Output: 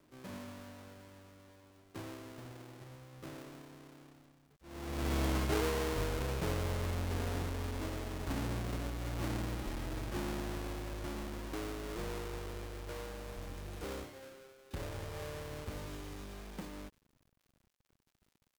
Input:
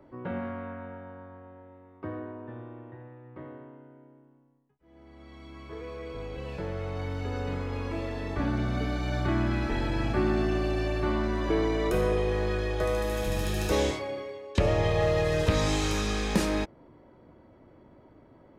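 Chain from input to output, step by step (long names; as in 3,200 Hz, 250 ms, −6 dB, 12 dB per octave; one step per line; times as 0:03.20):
each half-wave held at its own peak
source passing by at 0:05.15, 14 m/s, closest 3.1 metres
surface crackle 120 per second −71 dBFS
log-companded quantiser 8 bits
level +10.5 dB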